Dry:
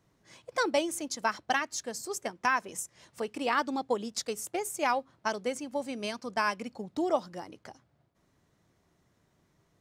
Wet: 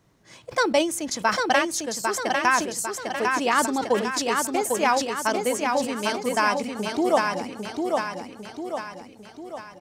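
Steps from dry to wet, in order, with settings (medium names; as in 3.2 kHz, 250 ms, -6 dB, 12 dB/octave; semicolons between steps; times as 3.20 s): on a send: feedback delay 800 ms, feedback 50%, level -4 dB; on the sum: decay stretcher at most 110 dB/s; trim +6.5 dB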